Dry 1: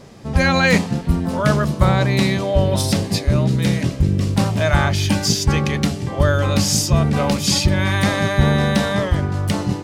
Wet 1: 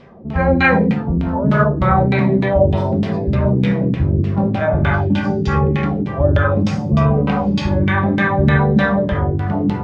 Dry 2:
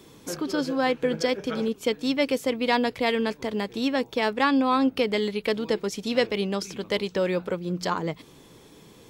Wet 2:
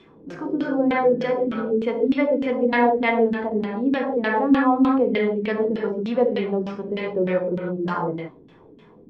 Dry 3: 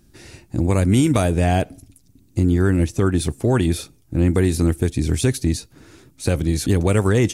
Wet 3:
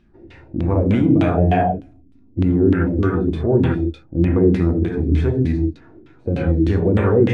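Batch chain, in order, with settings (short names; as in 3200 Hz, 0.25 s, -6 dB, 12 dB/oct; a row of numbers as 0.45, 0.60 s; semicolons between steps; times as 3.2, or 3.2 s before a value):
non-linear reverb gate 0.19 s flat, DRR -0.5 dB; LFO low-pass saw down 3.3 Hz 230–3300 Hz; harmonic-percussive split harmonic +8 dB; gain -8.5 dB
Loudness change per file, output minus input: +1.5, +4.0, +1.5 LU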